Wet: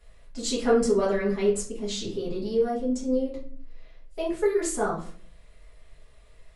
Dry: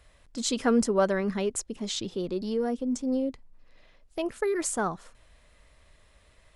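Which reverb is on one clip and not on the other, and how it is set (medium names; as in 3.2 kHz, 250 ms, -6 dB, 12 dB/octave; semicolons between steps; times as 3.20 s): simulated room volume 36 m³, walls mixed, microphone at 1.4 m; trim -8 dB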